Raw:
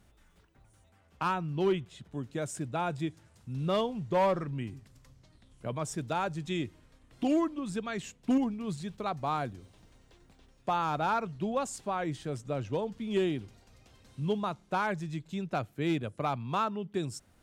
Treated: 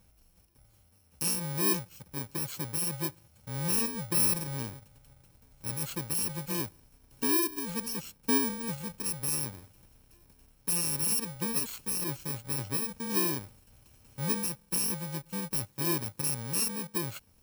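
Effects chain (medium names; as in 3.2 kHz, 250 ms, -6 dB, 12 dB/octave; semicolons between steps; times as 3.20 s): bit-reversed sample order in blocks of 64 samples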